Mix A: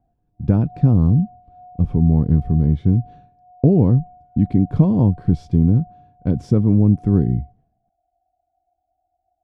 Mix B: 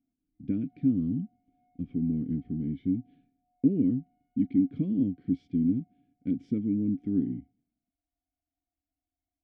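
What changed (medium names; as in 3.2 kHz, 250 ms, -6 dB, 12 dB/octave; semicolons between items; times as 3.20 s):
background: remove band-pass filter 450 Hz, Q 1.4; master: add vowel filter i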